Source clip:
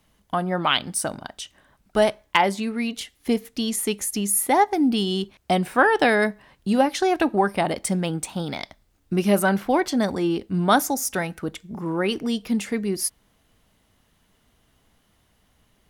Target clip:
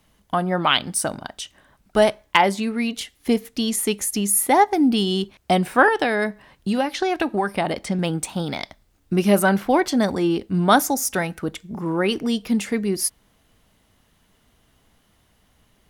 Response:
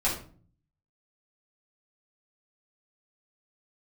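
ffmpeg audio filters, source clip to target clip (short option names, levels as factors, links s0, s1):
-filter_complex "[0:a]asettb=1/sr,asplit=3[s0][s1][s2];[s0]atrim=end=5.884[s3];[s1]atrim=start=5.88:end=7.99,asetpts=PTS-STARTPTS,afade=t=in:d=0.004:c=qsin,afade=t=out:st=2.106:d=0.004:c=qsin,acrossover=split=1400|5600[s4][s5][s6];[s4]acompressor=threshold=0.0794:ratio=4[s7];[s5]acompressor=threshold=0.0355:ratio=4[s8];[s6]acompressor=threshold=0.00316:ratio=4[s9];[s7][s8][s9]amix=inputs=3:normalize=0[s10];[s2]atrim=start=7.986[s11];[s3][s10]acrossfade=d=0.004:c1=hsin:c2=qsin[s12];[s12][s11]acrossfade=d=0.004:c1=qsin:c2=hsin,volume=1.33"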